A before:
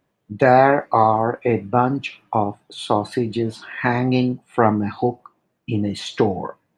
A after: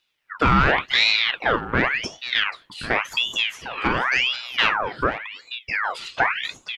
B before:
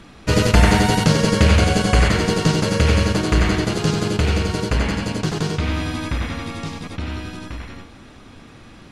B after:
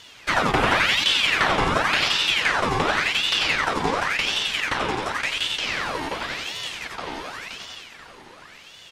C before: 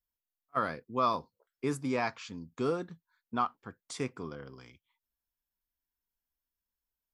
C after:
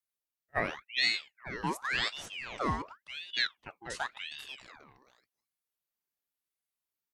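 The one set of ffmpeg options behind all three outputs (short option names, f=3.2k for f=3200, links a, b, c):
-filter_complex "[0:a]highpass=200,acrossover=split=3000[a][b];[a]asoftclip=type=tanh:threshold=-10.5dB[c];[b]acompressor=threshold=-39dB:ratio=6[d];[c][d]amix=inputs=2:normalize=0,aecho=1:1:486:0.251,aeval=exprs='val(0)*sin(2*PI*1900*n/s+1900*0.7/0.91*sin(2*PI*0.91*n/s))':c=same,volume=2.5dB"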